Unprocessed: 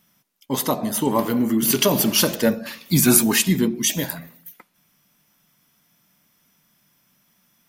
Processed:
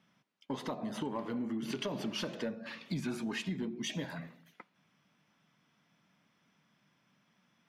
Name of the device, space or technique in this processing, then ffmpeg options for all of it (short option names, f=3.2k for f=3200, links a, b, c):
AM radio: -af "highpass=100,lowpass=3.3k,acompressor=threshold=-30dB:ratio=5,asoftclip=type=tanh:threshold=-21.5dB,volume=-4dB"